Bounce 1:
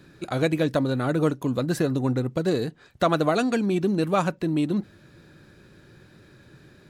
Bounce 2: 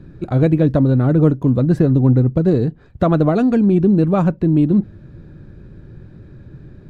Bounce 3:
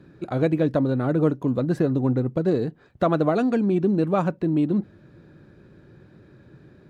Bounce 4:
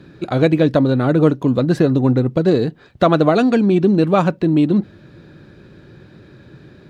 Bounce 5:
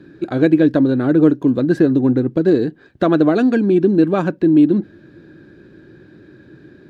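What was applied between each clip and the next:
tilt EQ -4.5 dB/octave; trim +1 dB
high-pass 390 Hz 6 dB/octave; trim -2 dB
peaking EQ 3.8 kHz +7 dB 1.6 oct; trim +7 dB
small resonant body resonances 310/1600 Hz, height 11 dB, ringing for 20 ms; trim -6.5 dB

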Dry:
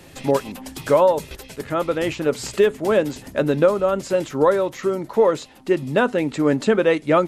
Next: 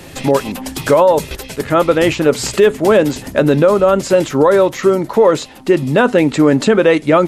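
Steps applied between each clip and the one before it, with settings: loudness maximiser +11 dB; trim -1 dB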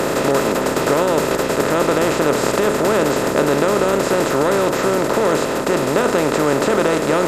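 spectral levelling over time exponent 0.2; treble shelf 8.4 kHz +8 dB; trim -13.5 dB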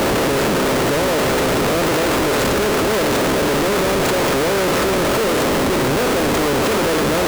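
transient shaper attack -10 dB, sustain +8 dB; Schmitt trigger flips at -23 dBFS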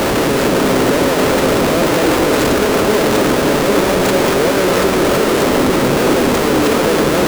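repeats whose band climbs or falls 168 ms, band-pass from 240 Hz, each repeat 0.7 oct, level 0 dB; trim +2 dB

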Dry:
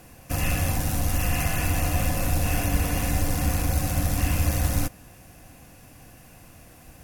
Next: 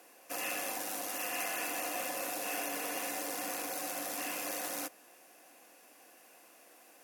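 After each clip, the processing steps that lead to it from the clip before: high-pass 340 Hz 24 dB/octave; trim -6.5 dB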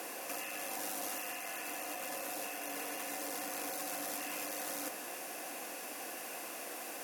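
compressor with a negative ratio -47 dBFS, ratio -1; trim +6.5 dB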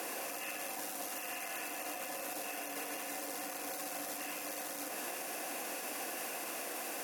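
peak limiter -35.5 dBFS, peak gain reduction 10 dB; trim +4.5 dB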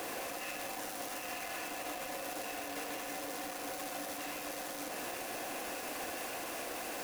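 square wave that keeps the level; trim -4 dB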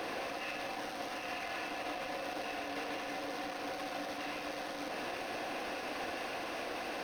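Savitzky-Golay filter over 15 samples; trim +2 dB

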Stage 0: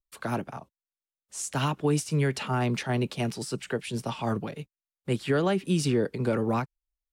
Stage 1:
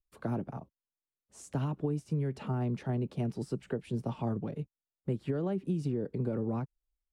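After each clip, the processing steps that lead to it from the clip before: tilt shelf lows +10 dB; compression, threshold -22 dBFS, peak gain reduction 10 dB; trim -7 dB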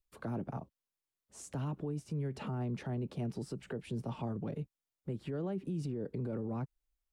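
peak limiter -31 dBFS, peak gain reduction 10.5 dB; trim +1 dB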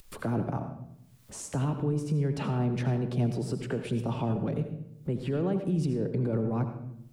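upward compressor, threshold -46 dBFS; on a send at -7.5 dB: reverberation RT60 0.75 s, pre-delay 69 ms; on the sum: trim +8 dB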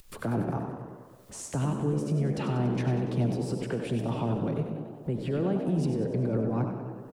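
frequency-shifting echo 95 ms, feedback 62%, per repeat +67 Hz, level -9.5 dB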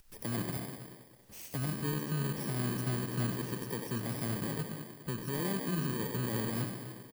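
bit-reversed sample order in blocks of 32 samples; trim -6.5 dB

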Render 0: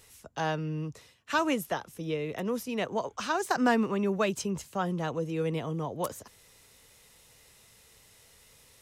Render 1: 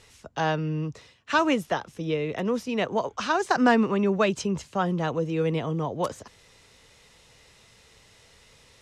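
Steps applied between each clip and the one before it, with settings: low-pass 5.9 kHz 12 dB/octave; trim +5 dB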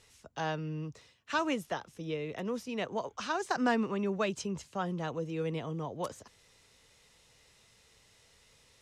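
treble shelf 5.1 kHz +5 dB; trim -9 dB

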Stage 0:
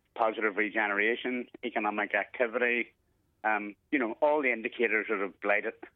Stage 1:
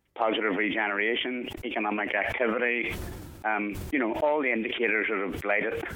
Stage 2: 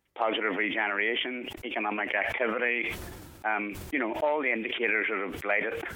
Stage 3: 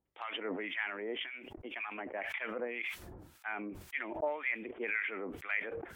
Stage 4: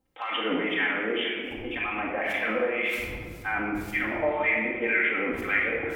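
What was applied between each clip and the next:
decay stretcher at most 31 dB/s
bass shelf 430 Hz -6 dB
harmonic tremolo 1.9 Hz, depth 100%, crossover 1.1 kHz; trim -5 dB
reverberation RT60 1.5 s, pre-delay 4 ms, DRR -3.5 dB; trim +6 dB

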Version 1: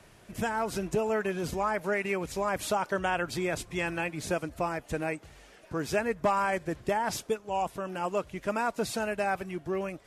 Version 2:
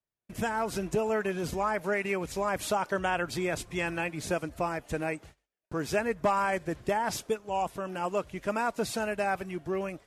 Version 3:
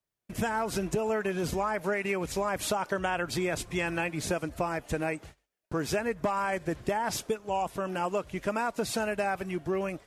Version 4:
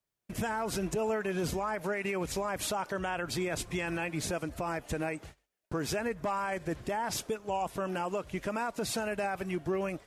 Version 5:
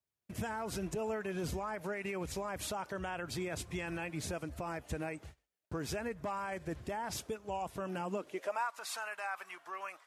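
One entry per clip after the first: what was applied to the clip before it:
gate -48 dBFS, range -40 dB
compression, threshold -29 dBFS, peak gain reduction 8 dB; trim +3.5 dB
peak limiter -24 dBFS, peak gain reduction 7 dB
high-pass sweep 67 Hz -> 1.1 kHz, 7.80–8.66 s; trim -6 dB

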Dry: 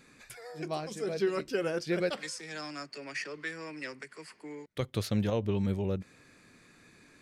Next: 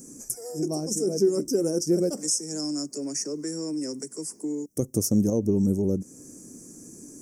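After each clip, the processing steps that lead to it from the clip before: FFT filter 110 Hz 0 dB, 290 Hz +11 dB, 1.7 kHz -20 dB, 3.9 kHz -30 dB, 5.6 kHz +15 dB; in parallel at +2.5 dB: compression, threshold -37 dBFS, peak gain reduction 17.5 dB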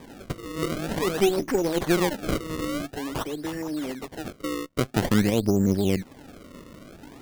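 Chebyshev shaper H 4 -16 dB, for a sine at -10.5 dBFS; decimation with a swept rate 31×, swing 160% 0.49 Hz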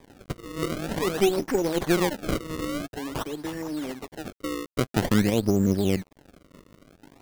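crossover distortion -45.5 dBFS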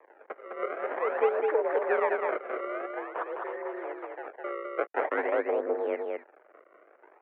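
delay 207 ms -3.5 dB; mistuned SSB +59 Hz 400–2000 Hz

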